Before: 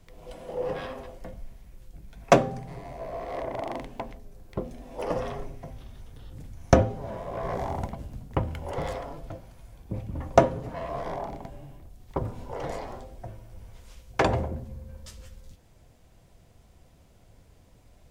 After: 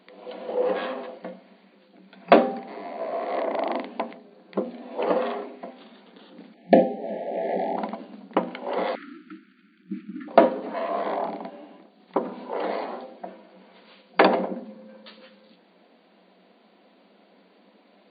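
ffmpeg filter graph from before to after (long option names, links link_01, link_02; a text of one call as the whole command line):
ffmpeg -i in.wav -filter_complex "[0:a]asettb=1/sr,asplit=3[link_01][link_02][link_03];[link_01]atrim=end=6.544[link_04];[link_02]atrim=start=6.54:end=7.77,asetpts=PTS-STARTPTS,afade=type=in:duration=0.004:curve=qsin,afade=type=out:start_time=1.226:duration=0.004:curve=qsin,acrusher=bits=8:mode=log:mix=0:aa=0.000001,asuperstop=centerf=1200:order=20:qfactor=1.5,highshelf=frequency=3900:gain=-11[link_05];[link_03]atrim=start=7.766[link_06];[link_04][link_05]acrossfade=duration=0.004:curve1=hsin:curve2=qsin[link_07];[link_07][link_06]acrossfade=duration=0.004:curve1=qsin:curve2=hsin,asettb=1/sr,asplit=3[link_08][link_09][link_10];[link_08]atrim=end=8.954[link_11];[link_09]atrim=start=8.95:end=10.28,asetpts=PTS-STARTPTS,afade=type=in:duration=0.004:curve=qsin,afade=type=out:start_time=1.326:duration=0.004:curve=qsin,equalizer=frequency=4000:width_type=o:width=0.75:gain=-11,aeval=exprs='sgn(val(0))*max(abs(val(0))-0.00158,0)':channel_layout=same,asuperstop=centerf=670:order=20:qfactor=0.73[link_12];[link_10]atrim=start=10.276[link_13];[link_11][link_12]acrossfade=duration=0.004:curve1=hsin:curve2=qsin[link_14];[link_14][link_13]acrossfade=duration=0.004:curve1=qsin:curve2=hsin,afftfilt=real='re*between(b*sr/4096,180,4700)':imag='im*between(b*sr/4096,180,4700)':win_size=4096:overlap=0.75,alimiter=level_in=7.5dB:limit=-1dB:release=50:level=0:latency=1,volume=-1dB" out.wav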